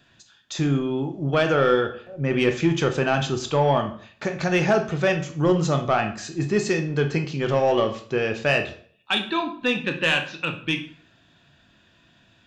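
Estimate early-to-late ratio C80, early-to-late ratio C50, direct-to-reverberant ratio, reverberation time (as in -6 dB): 15.0 dB, 11.0 dB, 5.5 dB, 0.50 s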